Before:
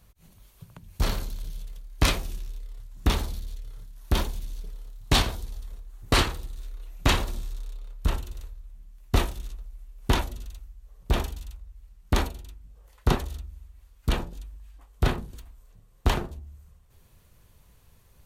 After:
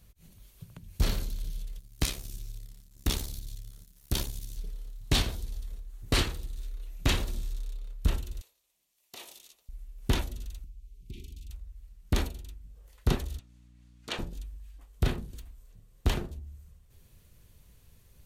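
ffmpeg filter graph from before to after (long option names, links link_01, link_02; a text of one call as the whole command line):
ffmpeg -i in.wav -filter_complex "[0:a]asettb=1/sr,asplit=3[link_01][link_02][link_03];[link_01]atrim=end=1.794[link_04];[link_02]atrim=start=1.79:end=4.57,asetpts=PTS-STARTPTS,afade=type=in:duration=0.004:curve=qsin,afade=type=out:start_time=2.776:duration=0.004:curve=qsin,bass=frequency=250:gain=-1,treble=frequency=4000:gain=9,aeval=exprs='sgn(val(0))*max(abs(val(0))-0.00473,0)':channel_layout=same,tremolo=f=69:d=0.667[link_05];[link_03]atrim=start=4.566[link_06];[link_04][link_05]acrossfade=duration=0.004:curve1=hsin:curve2=qsin[link_07];[link_07][link_06]acrossfade=duration=0.004:curve1=qsin:curve2=hsin,asettb=1/sr,asplit=3[link_08][link_09][link_10];[link_08]atrim=end=8.414[link_11];[link_09]atrim=start=8.41:end=9.69,asetpts=PTS-STARTPTS,afade=type=in:duration=0.004:curve=qsin,afade=type=out:start_time=1.276:duration=0.004:curve=qsin,equalizer=frequency=1500:width_type=o:width=0.83:gain=-9.5,acompressor=threshold=-29dB:ratio=5:attack=3.2:release=140:knee=1:detection=peak,highpass=780[link_12];[link_10]atrim=start=9.686[link_13];[link_11][link_12]acrossfade=duration=0.004:curve1=hsin:curve2=qsin[link_14];[link_14][link_13]acrossfade=duration=0.004:curve1=qsin:curve2=hsin,asettb=1/sr,asplit=3[link_15][link_16][link_17];[link_15]atrim=end=10.644[link_18];[link_16]atrim=start=10.64:end=11.5,asetpts=PTS-STARTPTS,afade=type=in:duration=0.004:curve=qsin,afade=type=out:start_time=0.856:duration=0.004:curve=qsin,highshelf=frequency=8000:gain=-5,acompressor=threshold=-40dB:ratio=5:attack=3.2:release=140:knee=1:detection=peak,asuperstop=centerf=940:order=20:qfactor=0.54[link_19];[link_17]atrim=start=11.496[link_20];[link_18][link_19]acrossfade=duration=0.004:curve1=hsin:curve2=qsin[link_21];[link_21][link_20]acrossfade=duration=0.004:curve1=qsin:curve2=hsin,asettb=1/sr,asplit=3[link_22][link_23][link_24];[link_22]atrim=end=13.394[link_25];[link_23]atrim=start=13.39:end=14.19,asetpts=PTS-STARTPTS,afade=type=in:duration=0.004:curve=qsin,afade=type=out:start_time=0.796:duration=0.004:curve=qsin,highpass=560,lowpass=7400,aeval=exprs='val(0)+0.00178*(sin(2*PI*60*n/s)+sin(2*PI*2*60*n/s)/2+sin(2*PI*3*60*n/s)/3+sin(2*PI*4*60*n/s)/4+sin(2*PI*5*60*n/s)/5)':channel_layout=same[link_26];[link_24]atrim=start=14.186[link_27];[link_25][link_26]acrossfade=duration=0.004:curve1=hsin:curve2=qsin[link_28];[link_28][link_27]acrossfade=duration=0.004:curve1=qsin:curve2=hsin,equalizer=frequency=970:width=0.9:gain=-7.5,alimiter=limit=-14.5dB:level=0:latency=1:release=406" out.wav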